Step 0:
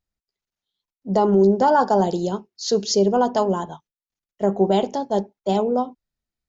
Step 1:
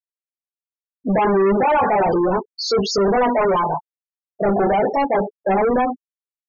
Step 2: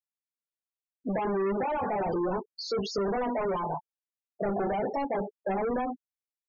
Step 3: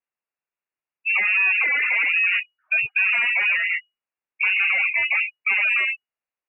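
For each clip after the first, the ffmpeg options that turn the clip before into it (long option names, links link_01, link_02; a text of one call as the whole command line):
ffmpeg -i in.wav -filter_complex "[0:a]flanger=delay=15.5:depth=4.9:speed=0.35,asplit=2[link_01][link_02];[link_02]highpass=frequency=720:poles=1,volume=36dB,asoftclip=type=tanh:threshold=-7dB[link_03];[link_01][link_03]amix=inputs=2:normalize=0,lowpass=frequency=3100:poles=1,volume=-6dB,afftfilt=real='re*gte(hypot(re,im),0.2)':imag='im*gte(hypot(re,im),0.2)':win_size=1024:overlap=0.75,volume=-3dB" out.wav
ffmpeg -i in.wav -filter_complex "[0:a]acrossover=split=330|910|5400[link_01][link_02][link_03][link_04];[link_01]acompressor=threshold=-23dB:ratio=4[link_05];[link_02]acompressor=threshold=-23dB:ratio=4[link_06];[link_03]acompressor=threshold=-30dB:ratio=4[link_07];[link_04]acompressor=threshold=-41dB:ratio=4[link_08];[link_05][link_06][link_07][link_08]amix=inputs=4:normalize=0,volume=-8.5dB" out.wav
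ffmpeg -i in.wav -af "lowpass=frequency=2500:width_type=q:width=0.5098,lowpass=frequency=2500:width_type=q:width=0.6013,lowpass=frequency=2500:width_type=q:width=0.9,lowpass=frequency=2500:width_type=q:width=2.563,afreqshift=-2900,volume=8.5dB" out.wav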